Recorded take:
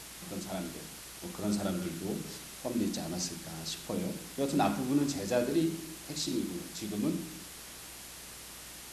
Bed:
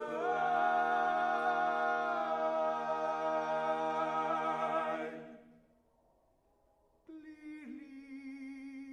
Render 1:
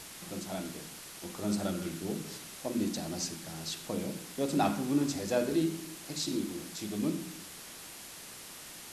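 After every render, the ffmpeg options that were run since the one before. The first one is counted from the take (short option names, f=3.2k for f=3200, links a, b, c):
-af "bandreject=f=60:t=h:w=4,bandreject=f=120:t=h:w=4,bandreject=f=180:t=h:w=4"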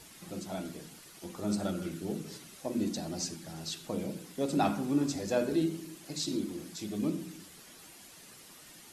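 -af "afftdn=nr=9:nf=-48"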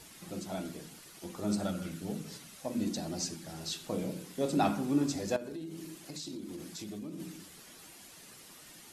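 -filter_complex "[0:a]asettb=1/sr,asplit=3[a][b][c];[a]atrim=end=1.654[d];[b]atrim=start=1.65:end=2.86,asetpts=PTS-STARTPTS,afade=t=in:d=0.004:c=qsin,afade=t=out:st=1.206:d=0.004:c=qsin,equalizer=f=360:t=o:w=0.34:g=-10[e];[c]atrim=start=2.856[f];[d][e]acrossfade=d=0.004:c1=hsin:c2=qsin[g];[g][f]acrossfade=d=0.004:c1=qsin:c2=hsin,asettb=1/sr,asplit=3[h][i][j];[h]atrim=end=3.464[k];[i]atrim=start=3.46:end=4.5,asetpts=PTS-STARTPTS,afade=t=in:d=0.004:c=qsin,afade=t=out:st=1.036:d=0.004:c=qsin,asplit=2[l][m];[m]adelay=27,volume=-8dB[n];[l][n]amix=inputs=2:normalize=0,atrim=end_sample=45864[o];[j]atrim=start=4.496[p];[k][o]acrossfade=d=0.004:c1=hsin:c2=qsin[q];[q][p]acrossfade=d=0.004:c1=qsin:c2=hsin,asettb=1/sr,asplit=3[r][s][t];[r]atrim=end=5.364[u];[s]atrim=start=5.36:end=7.2,asetpts=PTS-STARTPTS,afade=t=in:d=0.004:c=qsin,afade=t=out:st=1.836:d=0.004:c=qsin,acompressor=threshold=-38dB:ratio=8:attack=3.2:release=140:knee=1:detection=peak[v];[t]atrim=start=7.196[w];[u][v]acrossfade=d=0.004:c1=hsin:c2=qsin[x];[x][w]acrossfade=d=0.004:c1=qsin:c2=hsin"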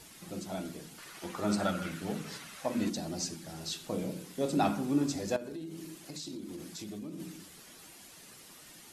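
-filter_complex "[0:a]asettb=1/sr,asplit=3[a][b][c];[a]atrim=end=0.984[d];[b]atrim=start=0.98:end=2.9,asetpts=PTS-STARTPTS,afade=t=in:d=0.004:c=qsin,afade=t=out:st=1.916:d=0.004:c=qsin,equalizer=f=1.5k:w=0.53:g=10[e];[c]atrim=start=2.896[f];[d][e]acrossfade=d=0.004:c1=hsin:c2=qsin[g];[g][f]acrossfade=d=0.004:c1=qsin:c2=hsin"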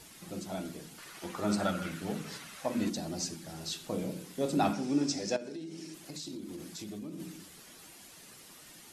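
-filter_complex "[0:a]asettb=1/sr,asplit=3[a][b][c];[a]atrim=end=4.734[d];[b]atrim=start=4.73:end=5.94,asetpts=PTS-STARTPTS,afade=t=in:d=0.004:c=qsin,afade=t=out:st=1.206:d=0.004:c=qsin,highpass=150,equalizer=f=1.1k:t=q:w=4:g=-6,equalizer=f=2.3k:t=q:w=4:g=3,equalizer=f=5.4k:t=q:w=4:g=10,lowpass=f=9.4k:w=0.5412,lowpass=f=9.4k:w=1.3066[e];[c]atrim=start=5.936[f];[d][e]acrossfade=d=0.004:c1=hsin:c2=qsin[g];[g][f]acrossfade=d=0.004:c1=qsin:c2=hsin"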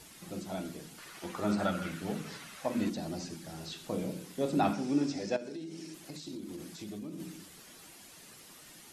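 -filter_complex "[0:a]acrossover=split=3500[a][b];[b]acompressor=threshold=-48dB:ratio=4:attack=1:release=60[c];[a][c]amix=inputs=2:normalize=0"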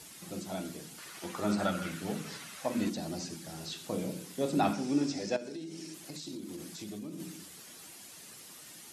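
-af "highpass=69,equalizer=f=8.9k:w=0.44:g=4.5"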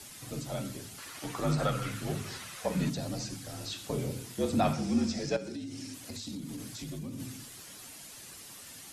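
-filter_complex "[0:a]afreqshift=-55,asplit=2[a][b];[b]asoftclip=type=tanh:threshold=-31dB,volume=-10.5dB[c];[a][c]amix=inputs=2:normalize=0"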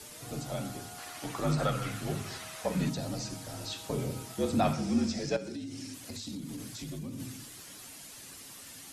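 -filter_complex "[1:a]volume=-18.5dB[a];[0:a][a]amix=inputs=2:normalize=0"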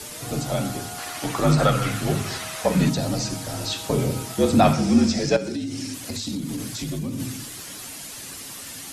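-af "volume=11dB"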